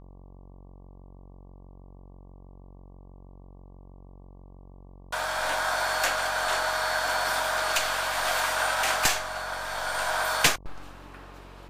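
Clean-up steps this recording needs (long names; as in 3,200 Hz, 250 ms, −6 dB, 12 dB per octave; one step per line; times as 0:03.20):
hum removal 46.2 Hz, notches 25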